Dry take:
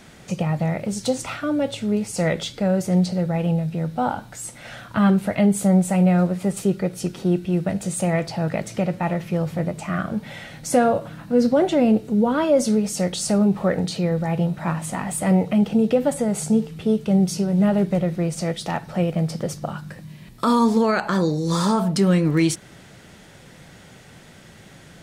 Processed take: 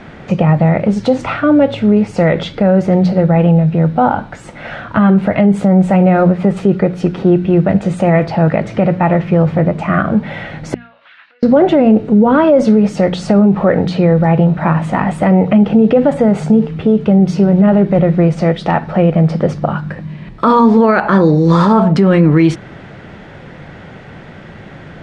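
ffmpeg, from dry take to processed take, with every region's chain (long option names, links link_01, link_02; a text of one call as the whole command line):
ffmpeg -i in.wav -filter_complex "[0:a]asettb=1/sr,asplit=3[link_01][link_02][link_03];[link_01]atrim=end=10.744[link_04];[link_02]atrim=start=10.74:end=11.43,asetpts=PTS-STARTPTS,afade=type=in:duration=0.004:curve=qsin,afade=type=out:start_time=0.686:duration=0.004:curve=qsin,acompressor=threshold=-29dB:ratio=12:attack=3.2:release=140:knee=1:detection=peak,asuperpass=centerf=2900:order=4:qfactor=1.2[link_05];[link_03]atrim=start=11.426[link_06];[link_04][link_05]acrossfade=duration=0.004:curve1=hsin:curve2=qsin[link_07];[link_07][link_06]acrossfade=duration=0.004:curve1=qsin:curve2=hsin,lowpass=2100,bandreject=frequency=60:width_type=h:width=6,bandreject=frequency=120:width_type=h:width=6,bandreject=frequency=180:width_type=h:width=6,bandreject=frequency=240:width_type=h:width=6,alimiter=level_in=14.5dB:limit=-1dB:release=50:level=0:latency=1,volume=-1dB" out.wav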